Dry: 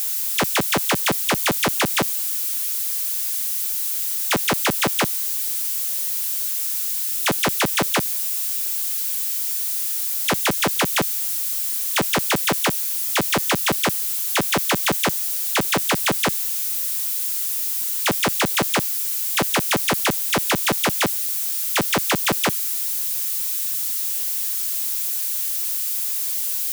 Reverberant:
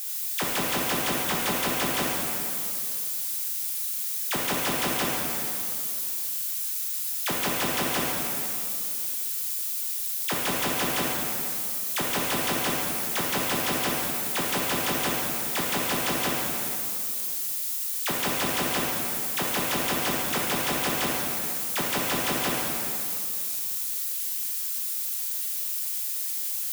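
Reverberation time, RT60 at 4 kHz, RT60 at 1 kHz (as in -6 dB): 2.6 s, 2.4 s, 2.6 s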